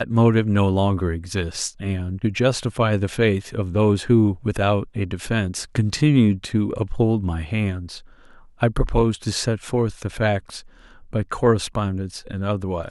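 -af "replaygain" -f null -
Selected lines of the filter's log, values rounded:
track_gain = +1.5 dB
track_peak = 0.402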